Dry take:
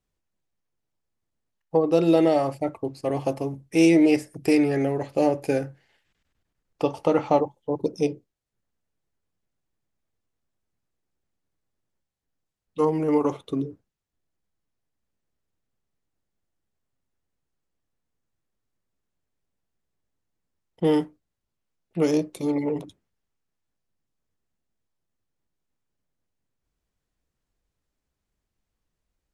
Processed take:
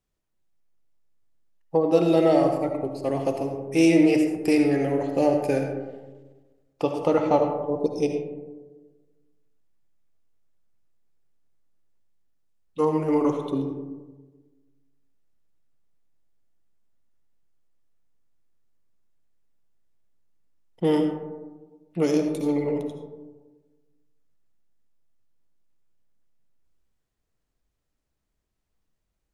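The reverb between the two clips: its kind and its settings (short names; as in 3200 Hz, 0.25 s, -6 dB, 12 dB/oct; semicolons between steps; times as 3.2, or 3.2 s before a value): digital reverb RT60 1.3 s, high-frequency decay 0.3×, pre-delay 35 ms, DRR 4.5 dB; gain -1 dB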